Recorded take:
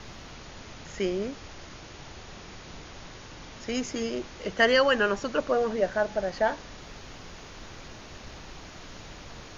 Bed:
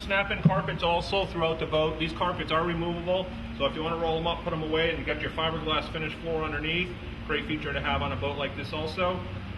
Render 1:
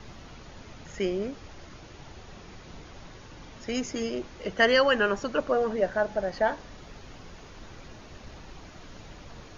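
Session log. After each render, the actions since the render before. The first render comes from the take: noise reduction 6 dB, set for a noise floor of -45 dBFS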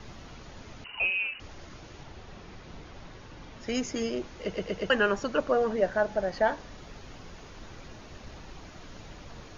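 0.84–1.40 s: frequency inversion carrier 2.9 kHz; 2.03–3.64 s: distance through air 65 m; 4.42 s: stutter in place 0.12 s, 4 plays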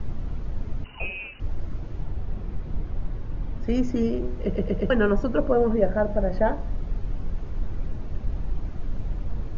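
tilt EQ -4.5 dB/octave; de-hum 61.69 Hz, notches 19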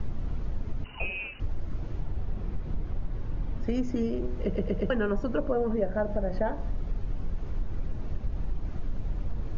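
compression 3:1, threshold -25 dBFS, peak gain reduction 8.5 dB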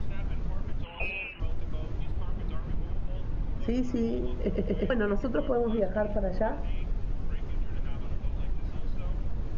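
add bed -24 dB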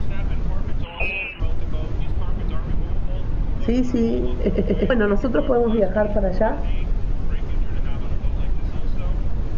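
trim +9 dB

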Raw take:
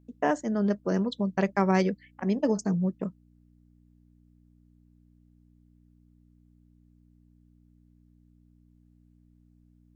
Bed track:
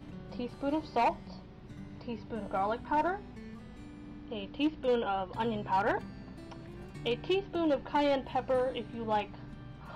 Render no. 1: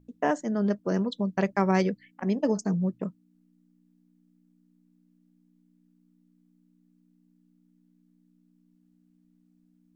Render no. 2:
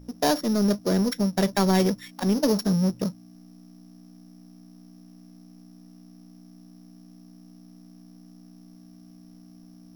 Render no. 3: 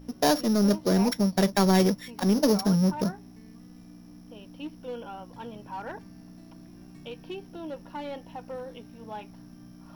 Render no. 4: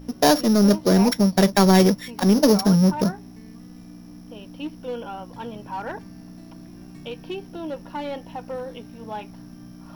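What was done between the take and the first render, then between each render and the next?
de-hum 60 Hz, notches 2
sorted samples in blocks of 8 samples; power-law waveshaper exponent 0.7
add bed track -8.5 dB
trim +6 dB

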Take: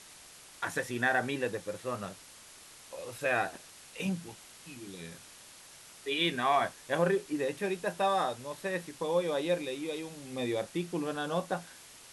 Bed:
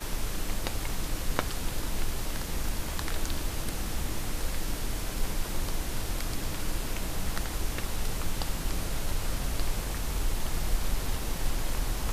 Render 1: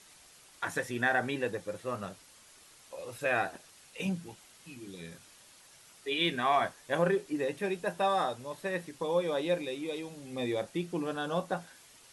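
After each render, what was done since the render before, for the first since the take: noise reduction 6 dB, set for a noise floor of -53 dBFS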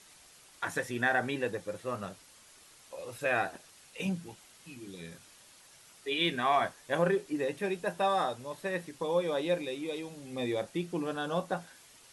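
no audible change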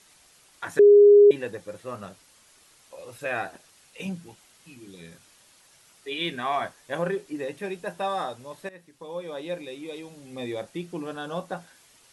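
0.79–1.31 s: bleep 410 Hz -9.5 dBFS; 8.69–10.37 s: fade in equal-power, from -16 dB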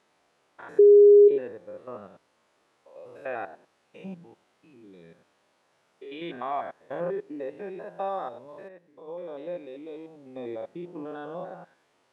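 spectrogram pixelated in time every 100 ms; band-pass filter 540 Hz, Q 0.68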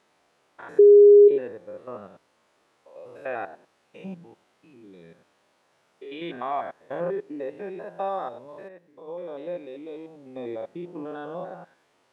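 trim +2 dB

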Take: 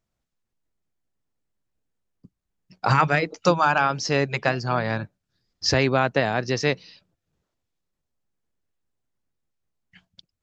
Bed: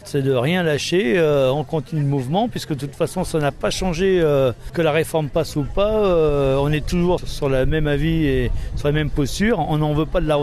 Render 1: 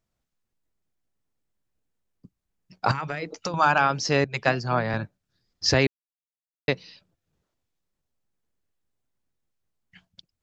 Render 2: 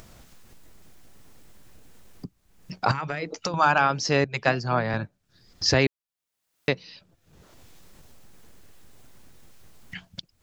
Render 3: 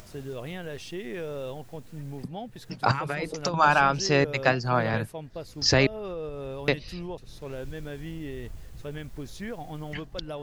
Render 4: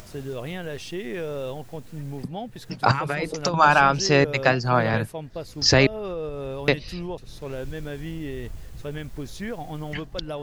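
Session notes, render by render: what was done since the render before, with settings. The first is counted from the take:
2.91–3.54 s: compression 16:1, threshold -25 dBFS; 4.24–4.94 s: three bands expanded up and down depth 70%; 5.87–6.68 s: mute
upward compressor, threshold -25 dBFS
add bed -18.5 dB
trim +4 dB; peak limiter -3 dBFS, peak gain reduction 2 dB

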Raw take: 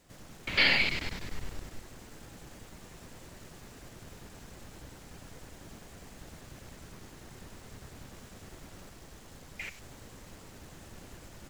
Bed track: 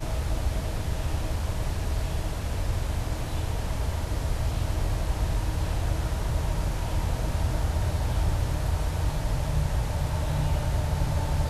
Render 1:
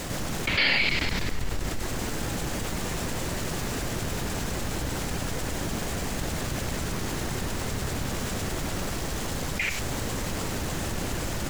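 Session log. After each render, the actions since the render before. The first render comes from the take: level flattener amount 70%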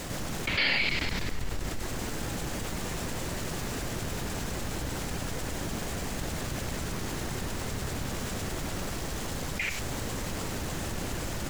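trim -3.5 dB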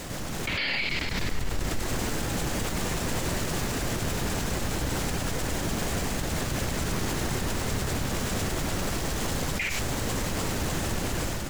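level rider gain up to 6 dB; peak limiter -19 dBFS, peak gain reduction 10.5 dB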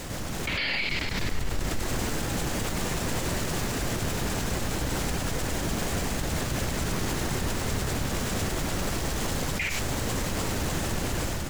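add bed track -17.5 dB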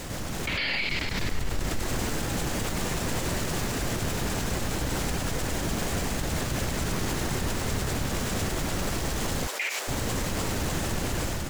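9.47–9.88 s: high-pass 430 Hz 24 dB/octave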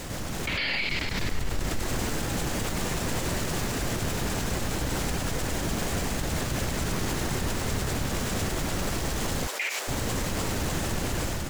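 no audible change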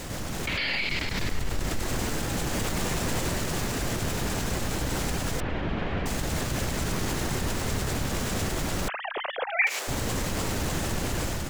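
2.52–3.29 s: companding laws mixed up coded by mu; 5.40–6.06 s: low-pass 3.1 kHz 24 dB/octave; 8.88–9.67 s: formants replaced by sine waves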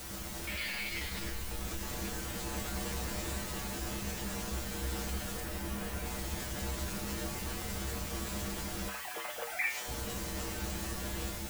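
word length cut 6-bit, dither triangular; feedback comb 67 Hz, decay 0.31 s, harmonics odd, mix 90%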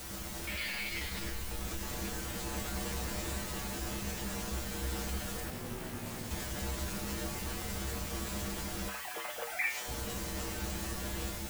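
5.50–6.31 s: ring modulator 170 Hz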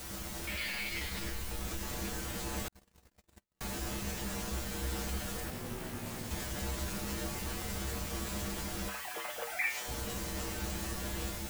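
2.68–3.61 s: gate -33 dBFS, range -57 dB

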